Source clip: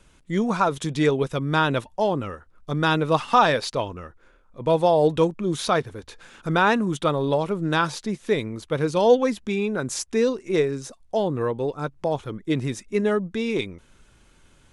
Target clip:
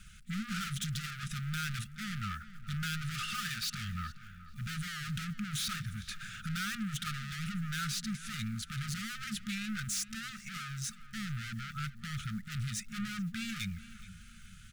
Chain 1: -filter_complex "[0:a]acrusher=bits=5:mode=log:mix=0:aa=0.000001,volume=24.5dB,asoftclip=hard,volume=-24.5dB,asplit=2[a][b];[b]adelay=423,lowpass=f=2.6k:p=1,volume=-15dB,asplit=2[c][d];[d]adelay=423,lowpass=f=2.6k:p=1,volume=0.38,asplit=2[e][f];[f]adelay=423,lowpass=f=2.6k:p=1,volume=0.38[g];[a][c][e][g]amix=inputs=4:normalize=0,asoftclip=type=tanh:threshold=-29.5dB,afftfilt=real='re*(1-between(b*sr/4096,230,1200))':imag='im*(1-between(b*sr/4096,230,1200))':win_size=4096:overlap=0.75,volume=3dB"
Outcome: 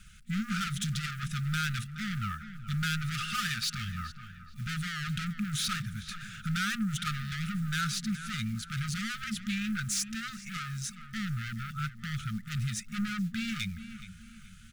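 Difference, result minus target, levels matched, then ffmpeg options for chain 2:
overloaded stage: distortion -4 dB
-filter_complex "[0:a]acrusher=bits=5:mode=log:mix=0:aa=0.000001,volume=35.5dB,asoftclip=hard,volume=-35.5dB,asplit=2[a][b];[b]adelay=423,lowpass=f=2.6k:p=1,volume=-15dB,asplit=2[c][d];[d]adelay=423,lowpass=f=2.6k:p=1,volume=0.38,asplit=2[e][f];[f]adelay=423,lowpass=f=2.6k:p=1,volume=0.38[g];[a][c][e][g]amix=inputs=4:normalize=0,asoftclip=type=tanh:threshold=-29.5dB,afftfilt=real='re*(1-between(b*sr/4096,230,1200))':imag='im*(1-between(b*sr/4096,230,1200))':win_size=4096:overlap=0.75,volume=3dB"

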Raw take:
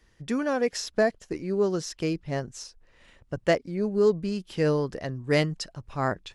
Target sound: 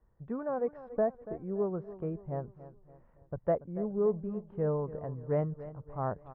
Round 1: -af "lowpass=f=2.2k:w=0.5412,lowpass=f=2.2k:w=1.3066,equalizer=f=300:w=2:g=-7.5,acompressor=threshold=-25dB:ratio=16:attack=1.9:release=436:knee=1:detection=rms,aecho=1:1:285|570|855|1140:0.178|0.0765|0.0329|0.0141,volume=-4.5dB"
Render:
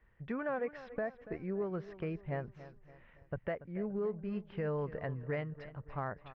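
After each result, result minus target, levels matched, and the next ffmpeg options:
2000 Hz band +13.5 dB; compressor: peak gain reduction +10.5 dB
-af "lowpass=f=1.1k:w=0.5412,lowpass=f=1.1k:w=1.3066,equalizer=f=300:w=2:g=-7.5,acompressor=threshold=-25dB:ratio=16:attack=1.9:release=436:knee=1:detection=rms,aecho=1:1:285|570|855|1140:0.178|0.0765|0.0329|0.0141,volume=-4.5dB"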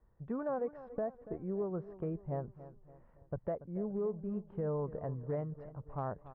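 compressor: peak gain reduction +9.5 dB
-af "lowpass=f=1.1k:w=0.5412,lowpass=f=1.1k:w=1.3066,equalizer=f=300:w=2:g=-7.5,aecho=1:1:285|570|855|1140:0.178|0.0765|0.0329|0.0141,volume=-4.5dB"

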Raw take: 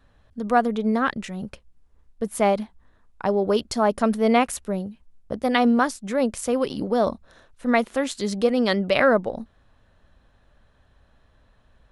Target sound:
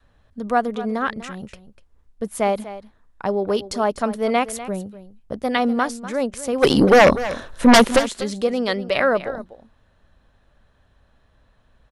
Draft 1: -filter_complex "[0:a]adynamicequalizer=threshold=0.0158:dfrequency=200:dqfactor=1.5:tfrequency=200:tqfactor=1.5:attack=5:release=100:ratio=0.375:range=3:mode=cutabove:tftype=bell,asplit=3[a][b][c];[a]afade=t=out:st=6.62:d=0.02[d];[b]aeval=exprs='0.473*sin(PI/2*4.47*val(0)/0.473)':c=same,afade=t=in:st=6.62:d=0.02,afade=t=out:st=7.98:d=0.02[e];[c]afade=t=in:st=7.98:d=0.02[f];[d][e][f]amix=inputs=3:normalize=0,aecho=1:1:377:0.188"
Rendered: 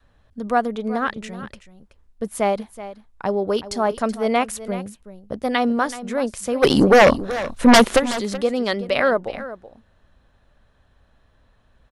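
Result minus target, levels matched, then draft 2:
echo 0.131 s late
-filter_complex "[0:a]adynamicequalizer=threshold=0.0158:dfrequency=200:dqfactor=1.5:tfrequency=200:tqfactor=1.5:attack=5:release=100:ratio=0.375:range=3:mode=cutabove:tftype=bell,asplit=3[a][b][c];[a]afade=t=out:st=6.62:d=0.02[d];[b]aeval=exprs='0.473*sin(PI/2*4.47*val(0)/0.473)':c=same,afade=t=in:st=6.62:d=0.02,afade=t=out:st=7.98:d=0.02[e];[c]afade=t=in:st=7.98:d=0.02[f];[d][e][f]amix=inputs=3:normalize=0,aecho=1:1:246:0.188"

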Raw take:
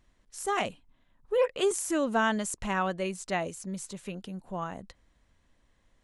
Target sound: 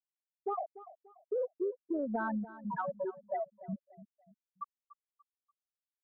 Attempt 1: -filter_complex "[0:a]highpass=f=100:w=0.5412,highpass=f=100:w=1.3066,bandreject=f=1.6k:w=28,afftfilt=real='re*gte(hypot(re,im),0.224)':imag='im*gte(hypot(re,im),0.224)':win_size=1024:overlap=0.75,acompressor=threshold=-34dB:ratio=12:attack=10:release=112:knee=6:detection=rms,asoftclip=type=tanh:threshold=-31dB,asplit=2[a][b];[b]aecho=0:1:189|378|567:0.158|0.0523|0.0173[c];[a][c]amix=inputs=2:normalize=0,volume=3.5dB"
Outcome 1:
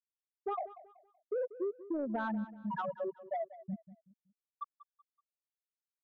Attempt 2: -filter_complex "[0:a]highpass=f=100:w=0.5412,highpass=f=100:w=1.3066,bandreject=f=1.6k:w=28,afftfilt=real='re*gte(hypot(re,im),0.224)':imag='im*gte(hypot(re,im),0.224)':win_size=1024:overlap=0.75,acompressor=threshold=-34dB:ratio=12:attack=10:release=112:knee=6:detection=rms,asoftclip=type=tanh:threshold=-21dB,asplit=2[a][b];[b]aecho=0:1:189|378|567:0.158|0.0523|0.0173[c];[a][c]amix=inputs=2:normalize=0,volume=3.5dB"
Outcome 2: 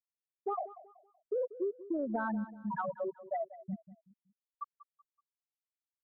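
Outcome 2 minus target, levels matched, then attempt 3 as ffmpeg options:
echo 0.102 s early
-filter_complex "[0:a]highpass=f=100:w=0.5412,highpass=f=100:w=1.3066,bandreject=f=1.6k:w=28,afftfilt=real='re*gte(hypot(re,im),0.224)':imag='im*gte(hypot(re,im),0.224)':win_size=1024:overlap=0.75,acompressor=threshold=-34dB:ratio=12:attack=10:release=112:knee=6:detection=rms,asoftclip=type=tanh:threshold=-21dB,asplit=2[a][b];[b]aecho=0:1:291|582|873:0.158|0.0523|0.0173[c];[a][c]amix=inputs=2:normalize=0,volume=3.5dB"

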